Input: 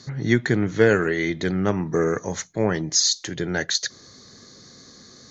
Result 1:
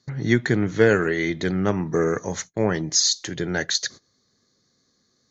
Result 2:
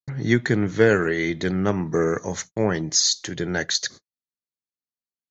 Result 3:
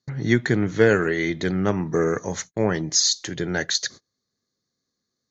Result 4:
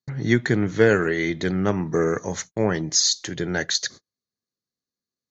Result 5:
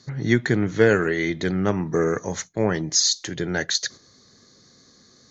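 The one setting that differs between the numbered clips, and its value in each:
gate, range: -20 dB, -59 dB, -33 dB, -45 dB, -7 dB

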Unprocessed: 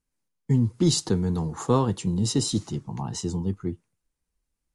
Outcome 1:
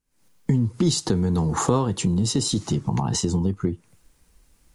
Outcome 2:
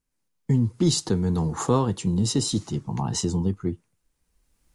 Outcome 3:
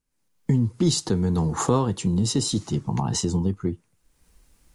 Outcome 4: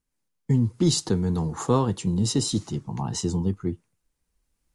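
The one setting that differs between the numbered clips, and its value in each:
recorder AGC, rising by: 83 dB/s, 13 dB/s, 34 dB/s, 5.1 dB/s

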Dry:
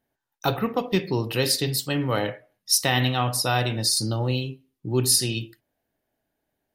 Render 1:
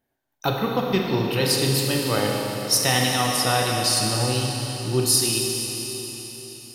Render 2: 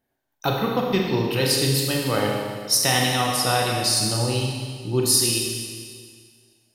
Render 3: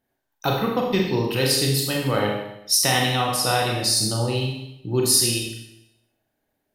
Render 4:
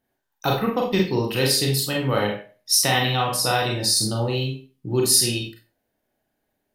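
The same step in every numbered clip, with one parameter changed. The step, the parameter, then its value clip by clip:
Schroeder reverb, RT60: 4.4 s, 1.9 s, 0.83 s, 0.3 s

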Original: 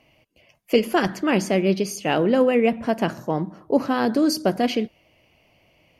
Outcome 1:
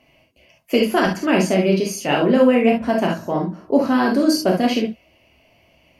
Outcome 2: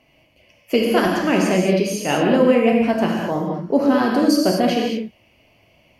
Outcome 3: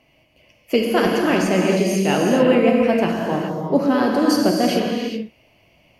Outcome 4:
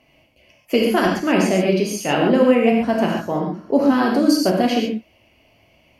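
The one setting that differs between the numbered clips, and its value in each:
gated-style reverb, gate: 90 ms, 250 ms, 450 ms, 160 ms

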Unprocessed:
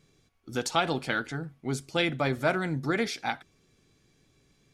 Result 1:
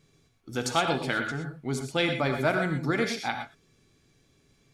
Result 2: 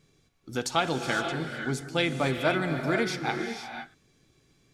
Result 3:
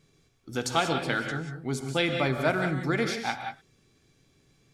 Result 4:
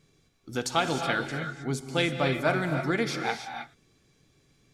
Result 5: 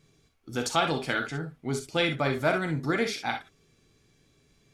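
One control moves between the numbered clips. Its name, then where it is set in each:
gated-style reverb, gate: 140 ms, 540 ms, 210 ms, 340 ms, 80 ms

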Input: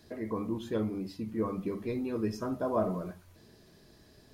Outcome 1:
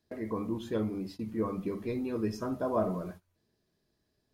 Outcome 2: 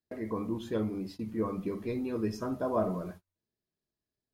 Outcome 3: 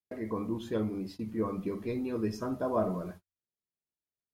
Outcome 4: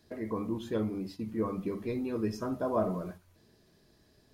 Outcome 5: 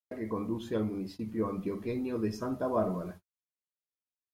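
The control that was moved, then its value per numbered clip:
gate, range: -19 dB, -34 dB, -47 dB, -6 dB, -60 dB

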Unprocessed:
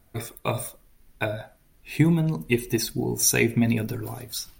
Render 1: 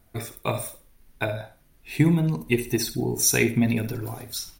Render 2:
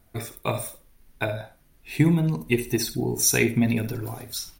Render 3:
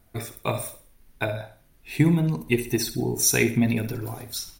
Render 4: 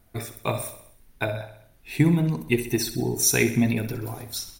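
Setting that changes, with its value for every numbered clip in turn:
feedback delay, feedback: 25%, 16%, 38%, 56%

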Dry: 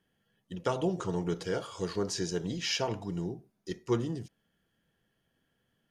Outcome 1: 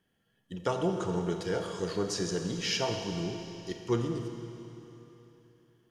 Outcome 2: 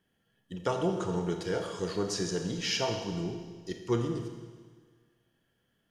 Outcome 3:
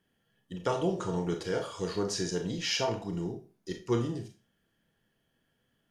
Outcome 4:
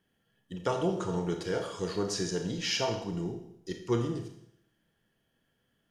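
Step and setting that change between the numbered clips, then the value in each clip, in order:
Schroeder reverb, RT60: 3.3 s, 1.6 s, 0.31 s, 0.75 s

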